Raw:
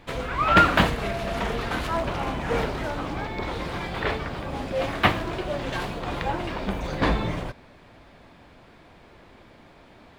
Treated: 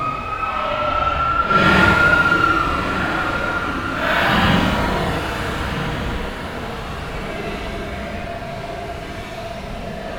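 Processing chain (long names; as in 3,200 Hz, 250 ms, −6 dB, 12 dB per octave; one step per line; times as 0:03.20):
extreme stretch with random phases 12×, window 0.05 s, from 0:00.43
feedback delay with all-pass diffusion 1,387 ms, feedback 40%, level −10 dB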